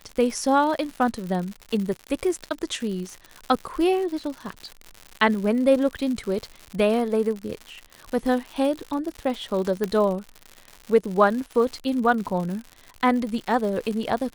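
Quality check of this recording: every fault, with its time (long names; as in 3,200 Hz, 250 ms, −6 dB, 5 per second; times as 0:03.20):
surface crackle 140 per second −30 dBFS
0:01.61–0:01.62: drop-out 6 ms
0:09.84: click −12 dBFS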